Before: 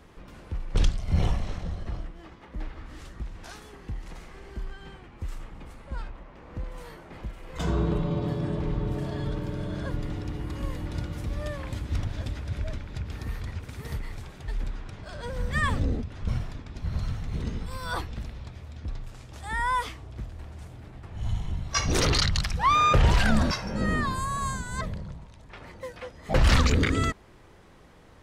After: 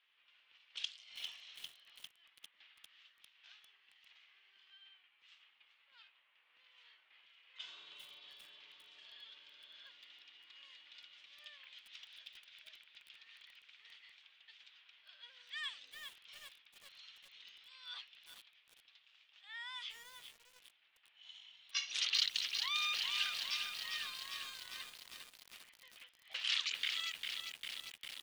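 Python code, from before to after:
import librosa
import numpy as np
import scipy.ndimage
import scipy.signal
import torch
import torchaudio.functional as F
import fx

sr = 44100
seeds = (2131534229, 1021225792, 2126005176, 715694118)

y = fx.env_lowpass(x, sr, base_hz=2300.0, full_db=-18.0)
y = fx.ladder_bandpass(y, sr, hz=3500.0, resonance_pct=55)
y = fx.echo_crushed(y, sr, ms=400, feedback_pct=80, bits=9, wet_db=-5.5)
y = y * librosa.db_to_amplitude(2.5)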